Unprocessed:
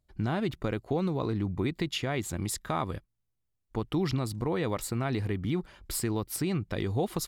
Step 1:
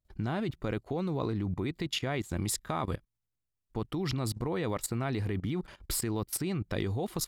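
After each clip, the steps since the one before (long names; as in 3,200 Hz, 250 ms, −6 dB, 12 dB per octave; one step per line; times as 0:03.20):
output level in coarse steps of 18 dB
level +4.5 dB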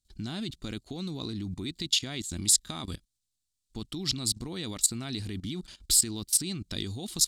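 octave-band graphic EQ 125/250/500/1,000/2,000/4,000/8,000 Hz −6/+3/−11/−8/−6/+11/+12 dB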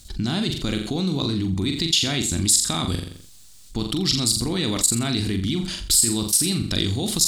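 on a send: flutter between parallel walls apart 7.3 metres, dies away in 0.36 s
on the sum: envelope flattener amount 50%
level +3 dB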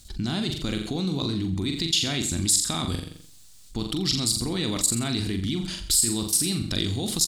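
slap from a distant wall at 23 metres, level −17 dB
level −3.5 dB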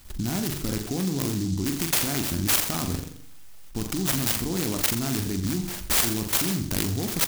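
on a send at −11 dB: convolution reverb RT60 0.50 s, pre-delay 3 ms
on the sum: short delay modulated by noise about 5,400 Hz, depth 0.11 ms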